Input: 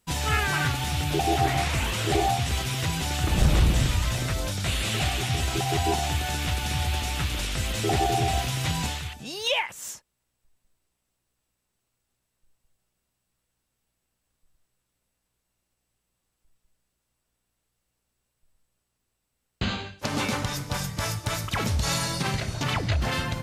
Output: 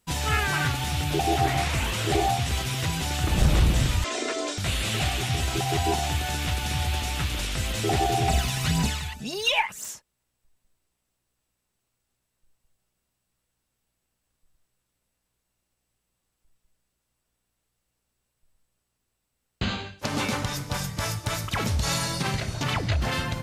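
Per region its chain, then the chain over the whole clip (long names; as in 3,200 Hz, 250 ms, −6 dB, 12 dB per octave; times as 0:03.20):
0:04.04–0:04.58: elliptic band-pass filter 260–7,900 Hz + parametric band 470 Hz +12.5 dB 0.5 octaves + comb filter 2.9 ms, depth 81%
0:08.28–0:09.86: notch filter 3,200 Hz, Q 26 + comb filter 4.7 ms, depth 46% + phase shifter 1.9 Hz, delay 1.3 ms, feedback 48%
whole clip: no processing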